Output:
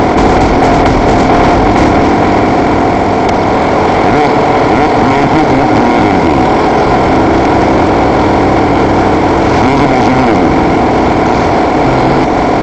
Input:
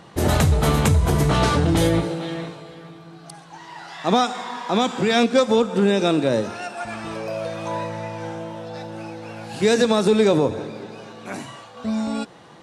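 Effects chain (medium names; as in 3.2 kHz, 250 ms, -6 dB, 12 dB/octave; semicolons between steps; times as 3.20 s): spectral levelling over time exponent 0.2; hum notches 50/100/150/200/250 Hz; reverb removal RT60 0.63 s; peaking EQ 1.3 kHz +12 dB 1.8 oct; in parallel at -2.5 dB: peak limiter -0.5 dBFS, peak gain reduction 9 dB; on the sum: pitch shift -9 st; saturation 0 dBFS, distortion -15 dB; trim -1 dB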